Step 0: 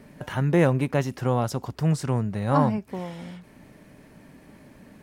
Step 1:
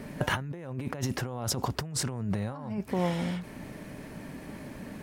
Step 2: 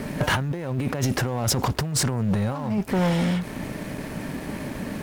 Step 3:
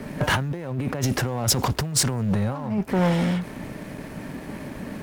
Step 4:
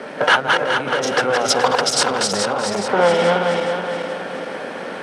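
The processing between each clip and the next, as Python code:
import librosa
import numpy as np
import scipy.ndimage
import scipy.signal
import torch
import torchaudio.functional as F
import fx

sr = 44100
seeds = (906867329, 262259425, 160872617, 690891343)

y1 = fx.over_compress(x, sr, threshold_db=-33.0, ratio=-1.0)
y2 = fx.leveller(y1, sr, passes=3)
y2 = fx.quant_dither(y2, sr, seeds[0], bits=10, dither='none')
y2 = y2 * 10.0 ** (-1.0 / 20.0)
y3 = fx.band_widen(y2, sr, depth_pct=40)
y4 = fx.reverse_delay_fb(y3, sr, ms=212, feedback_pct=67, wet_db=-3)
y4 = fx.cabinet(y4, sr, low_hz=400.0, low_slope=12, high_hz=8300.0, hz=(490.0, 770.0, 1400.0, 3200.0, 7100.0), db=(9, 5, 9, 5, -7))
y4 = y4 + 10.0 ** (-14.5 / 20.0) * np.pad(y4, (int(376 * sr / 1000.0), 0))[:len(y4)]
y4 = y4 * 10.0 ** (5.0 / 20.0)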